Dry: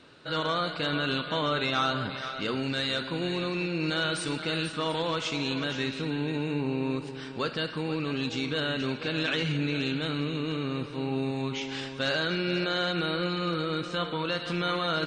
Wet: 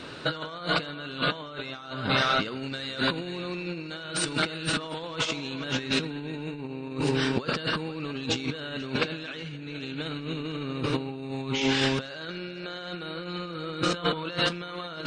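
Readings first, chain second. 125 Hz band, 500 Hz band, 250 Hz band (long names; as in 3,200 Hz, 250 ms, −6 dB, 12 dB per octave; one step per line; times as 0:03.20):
−1.0 dB, −1.0 dB, −1.0 dB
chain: compressor whose output falls as the input rises −36 dBFS, ratio −0.5
level +6.5 dB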